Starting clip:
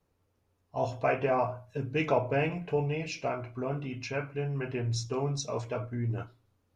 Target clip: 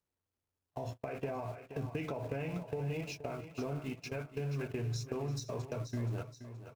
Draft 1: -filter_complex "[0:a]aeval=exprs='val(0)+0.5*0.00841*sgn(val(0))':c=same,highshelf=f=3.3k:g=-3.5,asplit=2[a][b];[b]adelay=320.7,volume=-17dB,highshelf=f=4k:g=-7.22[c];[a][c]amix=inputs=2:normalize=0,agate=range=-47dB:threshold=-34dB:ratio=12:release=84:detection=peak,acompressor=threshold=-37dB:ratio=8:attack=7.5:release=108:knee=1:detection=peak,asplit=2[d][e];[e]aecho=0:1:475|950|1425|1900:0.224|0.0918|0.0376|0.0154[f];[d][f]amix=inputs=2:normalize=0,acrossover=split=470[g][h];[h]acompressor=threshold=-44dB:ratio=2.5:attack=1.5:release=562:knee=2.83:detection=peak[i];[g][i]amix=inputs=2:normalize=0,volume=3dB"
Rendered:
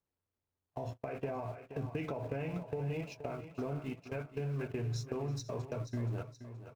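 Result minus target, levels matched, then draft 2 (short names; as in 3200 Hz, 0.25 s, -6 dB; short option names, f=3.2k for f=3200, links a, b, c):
4000 Hz band -3.0 dB
-filter_complex "[0:a]aeval=exprs='val(0)+0.5*0.00841*sgn(val(0))':c=same,highshelf=f=3.3k:g=3,asplit=2[a][b];[b]adelay=320.7,volume=-17dB,highshelf=f=4k:g=-7.22[c];[a][c]amix=inputs=2:normalize=0,agate=range=-47dB:threshold=-34dB:ratio=12:release=84:detection=peak,acompressor=threshold=-37dB:ratio=8:attack=7.5:release=108:knee=1:detection=peak,asplit=2[d][e];[e]aecho=0:1:475|950|1425|1900:0.224|0.0918|0.0376|0.0154[f];[d][f]amix=inputs=2:normalize=0,acrossover=split=470[g][h];[h]acompressor=threshold=-44dB:ratio=2.5:attack=1.5:release=562:knee=2.83:detection=peak[i];[g][i]amix=inputs=2:normalize=0,volume=3dB"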